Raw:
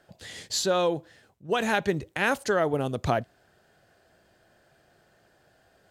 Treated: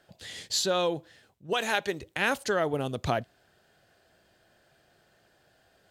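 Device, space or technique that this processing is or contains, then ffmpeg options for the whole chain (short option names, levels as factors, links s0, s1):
presence and air boost: -filter_complex "[0:a]asettb=1/sr,asplit=3[s0][s1][s2];[s0]atrim=end=1.534[s3];[s1]atrim=start=1.53:end=2.01,asetpts=PTS-STARTPTS,afade=t=in:d=0.004:c=qsin,afade=t=out:st=0.476:d=0.004:c=qsin,bass=f=250:g=-12,treble=f=4000:g=2[s4];[s2]atrim=start=2.006[s5];[s3][s4]acrossfade=d=0.004:c1=hsin:c2=qsin[s6];[s6][s5]acrossfade=d=0.004:c1=qsin:c2=hsin,equalizer=f=3400:t=o:w=1.3:g=4.5,highshelf=f=9300:g=4,volume=0.708"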